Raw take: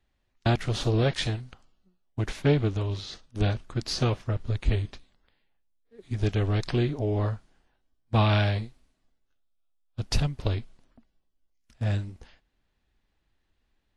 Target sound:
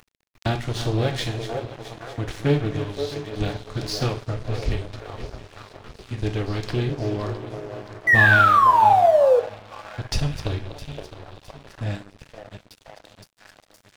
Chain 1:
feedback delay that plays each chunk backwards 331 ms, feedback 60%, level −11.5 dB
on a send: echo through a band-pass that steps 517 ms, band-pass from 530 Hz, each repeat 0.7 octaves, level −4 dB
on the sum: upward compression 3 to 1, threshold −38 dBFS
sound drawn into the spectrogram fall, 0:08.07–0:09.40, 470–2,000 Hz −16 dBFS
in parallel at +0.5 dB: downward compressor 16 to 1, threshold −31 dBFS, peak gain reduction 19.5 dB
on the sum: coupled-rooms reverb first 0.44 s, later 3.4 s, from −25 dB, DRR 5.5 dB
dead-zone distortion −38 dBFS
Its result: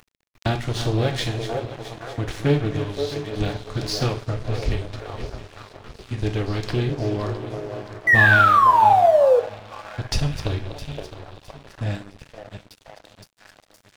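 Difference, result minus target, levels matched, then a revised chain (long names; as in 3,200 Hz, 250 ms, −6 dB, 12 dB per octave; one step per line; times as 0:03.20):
downward compressor: peak gain reduction −6 dB
feedback delay that plays each chunk backwards 331 ms, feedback 60%, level −11.5 dB
on a send: echo through a band-pass that steps 517 ms, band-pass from 530 Hz, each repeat 0.7 octaves, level −4 dB
on the sum: upward compression 3 to 1, threshold −38 dBFS
sound drawn into the spectrogram fall, 0:08.07–0:09.40, 470–2,000 Hz −16 dBFS
in parallel at +0.5 dB: downward compressor 16 to 1, threshold −37.5 dBFS, peak gain reduction 25.5 dB
on the sum: coupled-rooms reverb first 0.44 s, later 3.4 s, from −25 dB, DRR 5.5 dB
dead-zone distortion −38 dBFS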